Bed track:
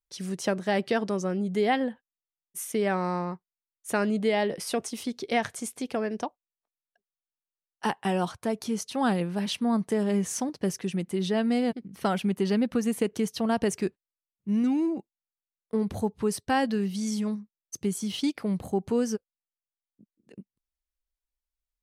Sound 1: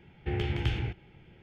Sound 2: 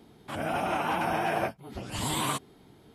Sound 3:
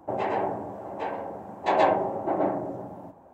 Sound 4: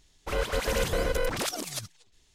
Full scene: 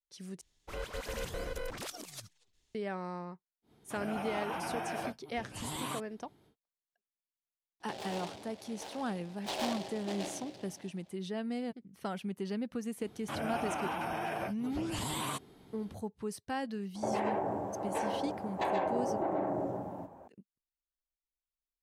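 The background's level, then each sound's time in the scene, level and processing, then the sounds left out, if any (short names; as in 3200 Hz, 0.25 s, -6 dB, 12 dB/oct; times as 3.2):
bed track -11.5 dB
0.41 replace with 4 -11.5 dB
3.62 add 2 -9.5 dB, fades 0.10 s
7.8 add 3 -15.5 dB + noise-modulated delay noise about 3100 Hz, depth 0.12 ms
13 add 2 -2 dB + compressor, threshold -30 dBFS
16.95 add 3 -0.5 dB + compressor, threshold -28 dBFS
not used: 1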